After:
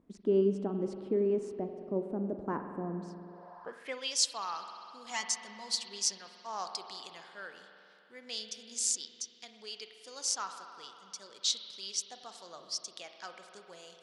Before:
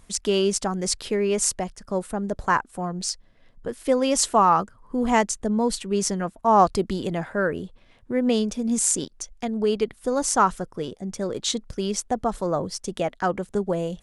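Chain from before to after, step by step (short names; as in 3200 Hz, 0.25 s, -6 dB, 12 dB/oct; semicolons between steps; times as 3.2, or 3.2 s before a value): 5.1–6.18 comb 5.5 ms, depth 85%; spring tank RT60 2.9 s, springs 46 ms, chirp 20 ms, DRR 6 dB; band-pass sweep 300 Hz -> 4800 Hz, 3.25–4.15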